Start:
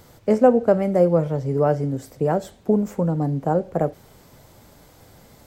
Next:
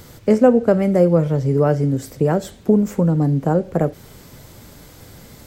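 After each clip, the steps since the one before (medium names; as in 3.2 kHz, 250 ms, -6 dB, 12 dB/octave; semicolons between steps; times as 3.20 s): peaking EQ 760 Hz -6.5 dB 1.2 oct; in parallel at -2 dB: compression, threshold -27 dBFS, peak gain reduction 14 dB; on the sum: trim +3.5 dB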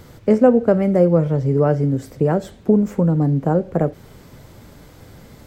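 treble shelf 3.6 kHz -9 dB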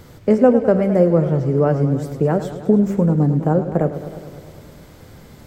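modulated delay 104 ms, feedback 72%, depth 100 cents, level -12 dB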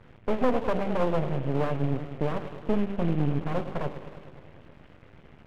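CVSD coder 16 kbps; half-wave rectifier; trim -5.5 dB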